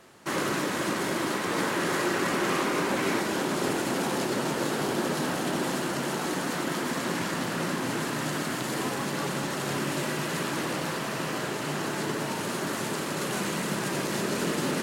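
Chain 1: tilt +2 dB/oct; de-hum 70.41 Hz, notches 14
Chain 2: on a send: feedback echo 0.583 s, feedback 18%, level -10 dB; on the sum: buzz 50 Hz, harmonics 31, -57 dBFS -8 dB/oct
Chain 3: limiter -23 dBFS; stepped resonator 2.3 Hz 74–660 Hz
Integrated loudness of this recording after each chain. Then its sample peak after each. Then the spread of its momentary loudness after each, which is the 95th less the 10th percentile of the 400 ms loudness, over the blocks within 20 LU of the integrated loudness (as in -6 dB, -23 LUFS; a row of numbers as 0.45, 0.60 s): -28.0, -28.5, -43.5 LUFS; -14.0, -14.5, -28.0 dBFS; 4, 4, 7 LU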